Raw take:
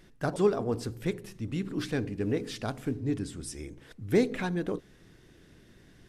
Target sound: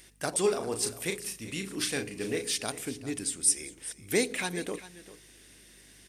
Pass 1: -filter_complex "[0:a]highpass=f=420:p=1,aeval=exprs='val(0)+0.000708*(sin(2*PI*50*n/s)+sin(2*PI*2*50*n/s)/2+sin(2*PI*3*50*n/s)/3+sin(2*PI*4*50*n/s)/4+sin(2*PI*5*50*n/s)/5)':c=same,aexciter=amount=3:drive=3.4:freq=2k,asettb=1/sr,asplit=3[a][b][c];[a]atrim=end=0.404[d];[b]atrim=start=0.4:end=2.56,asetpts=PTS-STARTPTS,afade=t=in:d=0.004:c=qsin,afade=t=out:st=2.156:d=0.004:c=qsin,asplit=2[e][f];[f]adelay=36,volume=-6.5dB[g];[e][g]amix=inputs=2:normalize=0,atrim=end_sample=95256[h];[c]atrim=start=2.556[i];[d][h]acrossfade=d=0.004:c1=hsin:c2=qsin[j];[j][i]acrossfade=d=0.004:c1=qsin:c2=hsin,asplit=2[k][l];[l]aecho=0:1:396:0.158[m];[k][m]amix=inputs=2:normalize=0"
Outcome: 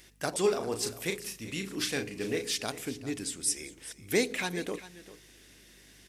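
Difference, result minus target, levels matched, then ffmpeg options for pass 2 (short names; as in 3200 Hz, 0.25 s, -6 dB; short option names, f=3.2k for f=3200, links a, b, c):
8000 Hz band -3.0 dB
-filter_complex "[0:a]highpass=f=420:p=1,equalizer=f=9k:w=7.7:g=12,aeval=exprs='val(0)+0.000708*(sin(2*PI*50*n/s)+sin(2*PI*2*50*n/s)/2+sin(2*PI*3*50*n/s)/3+sin(2*PI*4*50*n/s)/4+sin(2*PI*5*50*n/s)/5)':c=same,aexciter=amount=3:drive=3.4:freq=2k,asettb=1/sr,asplit=3[a][b][c];[a]atrim=end=0.404[d];[b]atrim=start=0.4:end=2.56,asetpts=PTS-STARTPTS,afade=t=in:d=0.004:c=qsin,afade=t=out:st=2.156:d=0.004:c=qsin,asplit=2[e][f];[f]adelay=36,volume=-6.5dB[g];[e][g]amix=inputs=2:normalize=0,atrim=end_sample=95256[h];[c]atrim=start=2.556[i];[d][h]acrossfade=d=0.004:c1=hsin:c2=qsin[j];[j][i]acrossfade=d=0.004:c1=qsin:c2=hsin,asplit=2[k][l];[l]aecho=0:1:396:0.158[m];[k][m]amix=inputs=2:normalize=0"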